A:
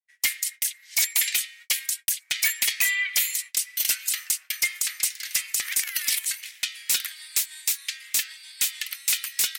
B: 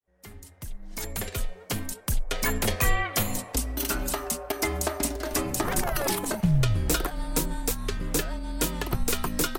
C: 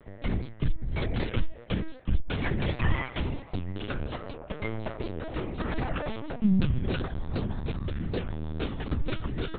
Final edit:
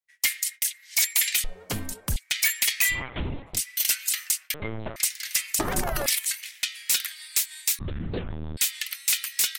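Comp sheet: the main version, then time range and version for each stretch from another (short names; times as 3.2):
A
1.44–2.16 from B
2.97–3.54 from C, crossfade 0.16 s
4.54–4.96 from C
5.59–6.06 from B
7.79–8.57 from C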